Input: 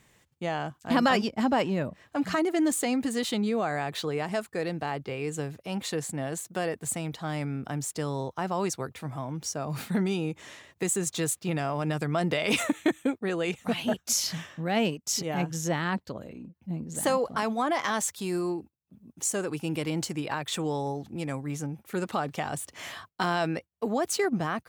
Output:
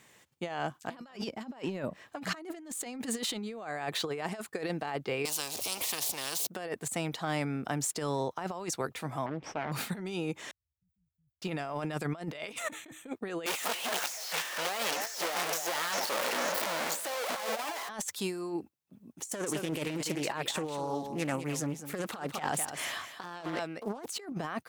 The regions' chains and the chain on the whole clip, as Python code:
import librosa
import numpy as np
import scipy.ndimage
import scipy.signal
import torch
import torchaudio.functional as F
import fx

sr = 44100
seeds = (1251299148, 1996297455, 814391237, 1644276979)

y = fx.chain(x, sr, fx.zero_step(step_db=-46.0),
    fx.curve_eq(hz=(480.0, 1700.0, 2500.0, 4800.0), db=(0, -27, -15, -5)),
    fx.spectral_comp(ratio=10.0), at=(5.25, 6.47))
y = fx.chain(y, sr, fx.lower_of_two(delay_ms=0.37),
    fx.lowpass(hz=2300.0, slope=12),
    fx.doppler_dist(depth_ms=0.73), at=(9.26, 9.72))
y = fx.chain(y, sr, fx.cheby2_bandstop(low_hz=340.0, high_hz=9500.0, order=4, stop_db=80),
    fx.air_absorb(metres=400.0), at=(10.51, 11.42))
y = fx.chain(y, sr, fx.clip_1bit(),
    fx.highpass(hz=480.0, slope=12),
    fx.echo_stepped(ms=285, hz=660.0, octaves=1.4, feedback_pct=70, wet_db=-2.0), at=(13.46, 17.89))
y = fx.chain(y, sr, fx.high_shelf(hz=11000.0, db=7.5),
    fx.echo_single(ms=203, db=-11.0),
    fx.doppler_dist(depth_ms=0.38), at=(19.26, 24.06))
y = fx.highpass(y, sr, hz=300.0, slope=6)
y = fx.over_compress(y, sr, threshold_db=-34.0, ratio=-0.5)